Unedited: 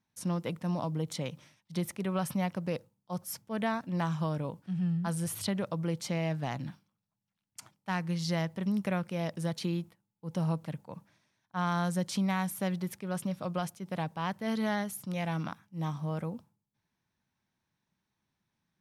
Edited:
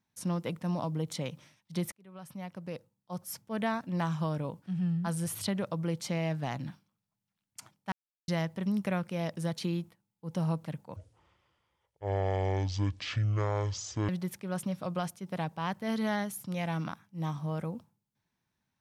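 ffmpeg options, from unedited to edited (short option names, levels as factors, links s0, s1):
-filter_complex "[0:a]asplit=6[s0][s1][s2][s3][s4][s5];[s0]atrim=end=1.92,asetpts=PTS-STARTPTS,afade=t=out:st=1.916:d=0.004:c=hsin[s6];[s1]atrim=start=1.92:end=7.92,asetpts=PTS-STARTPTS,afade=t=in:d=1.62,afade=t=out:st=5.996:d=0.004:c=hsin[s7];[s2]atrim=start=7.92:end=8.28,asetpts=PTS-STARTPTS,volume=0[s8];[s3]atrim=start=8.28:end=10.964,asetpts=PTS-STARTPTS,afade=t=in:d=0.004:c=hsin[s9];[s4]atrim=start=10.96:end=12.68,asetpts=PTS-STARTPTS,asetrate=24255,aresample=44100[s10];[s5]atrim=start=12.676[s11];[s6][s7][s8][s9]concat=n=4:v=0:a=1[s12];[s12][s10]acrossfade=d=0.004:c1=hsin:c2=hsin[s13];[s13][s11]acrossfade=d=0.004:c1=hsin:c2=hsin"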